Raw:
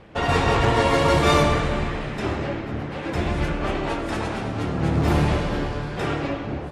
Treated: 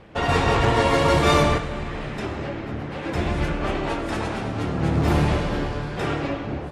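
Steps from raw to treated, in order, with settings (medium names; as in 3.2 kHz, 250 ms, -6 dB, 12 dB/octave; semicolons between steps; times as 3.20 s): 1.57–3.02 s: compression, threshold -25 dBFS, peak gain reduction 6.5 dB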